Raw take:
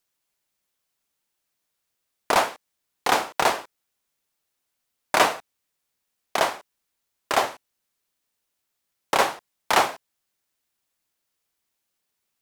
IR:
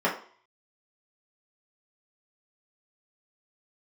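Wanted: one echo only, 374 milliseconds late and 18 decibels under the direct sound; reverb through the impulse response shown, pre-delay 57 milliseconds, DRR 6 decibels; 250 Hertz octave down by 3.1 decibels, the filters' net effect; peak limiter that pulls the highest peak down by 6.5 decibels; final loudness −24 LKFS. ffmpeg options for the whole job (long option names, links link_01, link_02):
-filter_complex "[0:a]equalizer=frequency=250:width_type=o:gain=-4.5,alimiter=limit=-12dB:level=0:latency=1,aecho=1:1:374:0.126,asplit=2[link_01][link_02];[1:a]atrim=start_sample=2205,adelay=57[link_03];[link_02][link_03]afir=irnorm=-1:irlink=0,volume=-20dB[link_04];[link_01][link_04]amix=inputs=2:normalize=0,volume=3dB"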